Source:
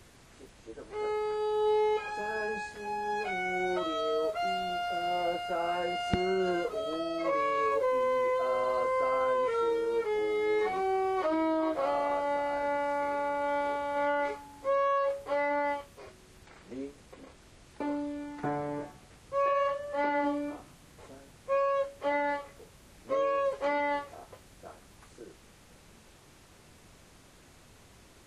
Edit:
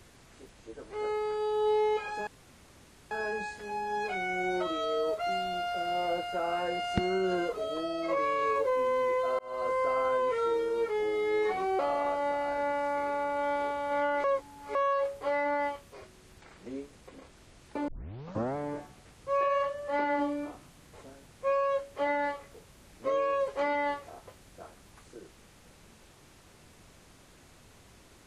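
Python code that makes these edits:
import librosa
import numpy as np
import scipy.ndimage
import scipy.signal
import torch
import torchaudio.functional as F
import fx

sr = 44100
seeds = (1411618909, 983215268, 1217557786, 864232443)

y = fx.edit(x, sr, fx.insert_room_tone(at_s=2.27, length_s=0.84),
    fx.fade_in_span(start_s=8.55, length_s=0.32),
    fx.cut(start_s=10.95, length_s=0.89),
    fx.reverse_span(start_s=14.29, length_s=0.51),
    fx.tape_start(start_s=17.93, length_s=0.68), tone=tone)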